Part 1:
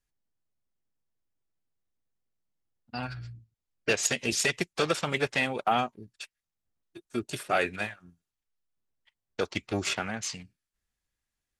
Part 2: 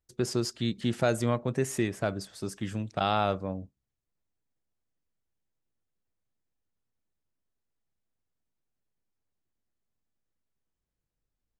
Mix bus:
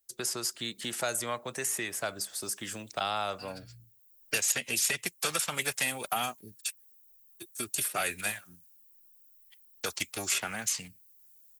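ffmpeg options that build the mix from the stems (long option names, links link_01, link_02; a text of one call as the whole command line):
ffmpeg -i stem1.wav -i stem2.wav -filter_complex "[0:a]aemphasis=mode=production:type=50fm,adelay=450,volume=-1.5dB[link_01];[1:a]bass=frequency=250:gain=-12,treble=frequency=4000:gain=1,volume=1.5dB,asplit=2[link_02][link_03];[link_03]apad=whole_len=531229[link_04];[link_01][link_04]sidechaincompress=threshold=-37dB:ratio=4:attack=16:release=768[link_05];[link_05][link_02]amix=inputs=2:normalize=0,aemphasis=mode=production:type=75fm,acrossover=split=190|670|3000|6700[link_06][link_07][link_08][link_09][link_10];[link_06]acompressor=threshold=-48dB:ratio=4[link_11];[link_07]acompressor=threshold=-43dB:ratio=4[link_12];[link_08]acompressor=threshold=-30dB:ratio=4[link_13];[link_09]acompressor=threshold=-43dB:ratio=4[link_14];[link_10]acompressor=threshold=-33dB:ratio=4[link_15];[link_11][link_12][link_13][link_14][link_15]amix=inputs=5:normalize=0" out.wav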